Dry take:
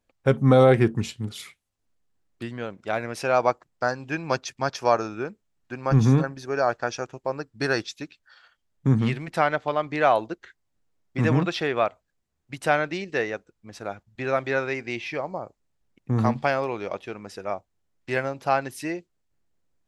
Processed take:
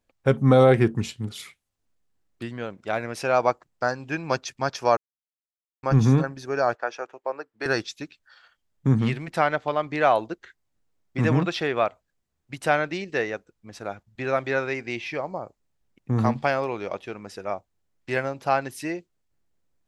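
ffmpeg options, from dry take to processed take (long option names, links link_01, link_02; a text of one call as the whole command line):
ffmpeg -i in.wav -filter_complex "[0:a]asettb=1/sr,asplit=3[link_01][link_02][link_03];[link_01]atrim=end=6.754[link_04];[link_02]atrim=start=6.75:end=7.66,asetpts=PTS-STARTPTS,afade=type=in:duration=0.004:curve=qsin,afade=type=out:start_time=0.906:duration=0.004:curve=qsin,acrossover=split=350 2900:gain=0.0631 1 0.251[link_05][link_06][link_07];[link_05][link_06][link_07]amix=inputs=3:normalize=0[link_08];[link_03]atrim=start=7.656[link_09];[link_04][link_08]acrossfade=duration=0.004:curve1=hsin:curve2=qsin[link_10];[link_10][link_09]acrossfade=duration=0.004:curve1=qsin:curve2=hsin,asplit=3[link_11][link_12][link_13];[link_11]atrim=end=4.97,asetpts=PTS-STARTPTS,afade=type=out:start_time=4.966:duration=0.004:curve=hsin[link_14];[link_12]atrim=start=4.97:end=5.83,asetpts=PTS-STARTPTS,volume=0[link_15];[link_13]atrim=start=5.83,asetpts=PTS-STARTPTS,afade=type=in:duration=0.004:curve=hsin[link_16];[link_14][link_15][link_16]concat=n=3:v=0:a=1" out.wav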